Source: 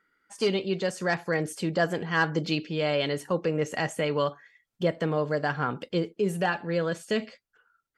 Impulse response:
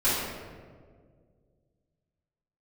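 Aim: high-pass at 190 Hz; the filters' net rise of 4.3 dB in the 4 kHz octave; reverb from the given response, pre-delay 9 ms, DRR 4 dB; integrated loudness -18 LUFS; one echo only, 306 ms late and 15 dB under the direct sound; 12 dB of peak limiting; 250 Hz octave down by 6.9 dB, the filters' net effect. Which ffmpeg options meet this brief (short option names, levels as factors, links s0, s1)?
-filter_complex "[0:a]highpass=190,equalizer=f=250:t=o:g=-8.5,equalizer=f=4000:t=o:g=6,alimiter=limit=0.075:level=0:latency=1,aecho=1:1:306:0.178,asplit=2[s0][s1];[1:a]atrim=start_sample=2205,adelay=9[s2];[s1][s2]afir=irnorm=-1:irlink=0,volume=0.126[s3];[s0][s3]amix=inputs=2:normalize=0,volume=5.31"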